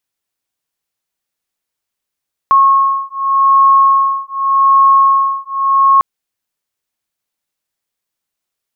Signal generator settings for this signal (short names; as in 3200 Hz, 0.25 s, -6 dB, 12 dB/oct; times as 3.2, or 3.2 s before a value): beating tones 1090 Hz, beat 0.85 Hz, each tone -10.5 dBFS 3.50 s